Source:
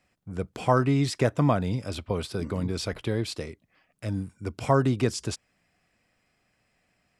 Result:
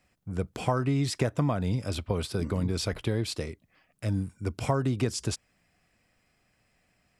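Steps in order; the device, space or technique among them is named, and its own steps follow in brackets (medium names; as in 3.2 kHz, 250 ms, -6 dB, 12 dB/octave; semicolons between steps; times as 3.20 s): ASMR close-microphone chain (bass shelf 110 Hz +5.5 dB; compression, threshold -22 dBFS, peak gain reduction 7.5 dB; treble shelf 8.6 kHz +4.5 dB)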